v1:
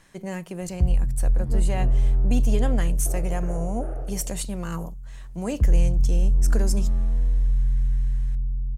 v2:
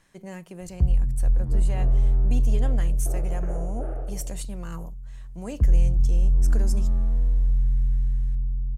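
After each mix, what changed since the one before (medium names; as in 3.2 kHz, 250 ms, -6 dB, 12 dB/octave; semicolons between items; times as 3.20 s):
speech -6.5 dB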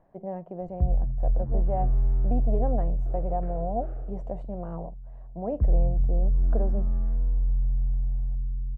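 speech: add resonant low-pass 690 Hz, resonance Q 4.4; first sound -3.5 dB; second sound -9.0 dB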